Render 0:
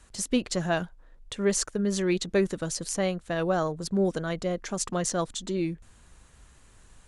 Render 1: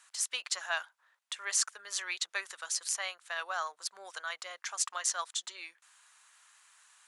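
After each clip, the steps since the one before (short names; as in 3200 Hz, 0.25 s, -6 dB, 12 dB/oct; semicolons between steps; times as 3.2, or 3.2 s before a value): HPF 1000 Hz 24 dB/oct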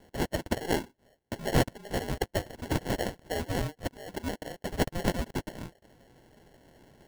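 sample-and-hold 36×; gain +5 dB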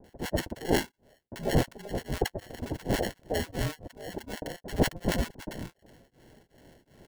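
bands offset in time lows, highs 40 ms, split 930 Hz; beating tremolo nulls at 2.7 Hz; gain +4 dB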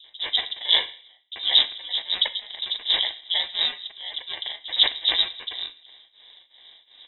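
plate-style reverb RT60 0.62 s, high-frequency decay 0.75×, DRR 10.5 dB; inverted band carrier 3800 Hz; gain +5 dB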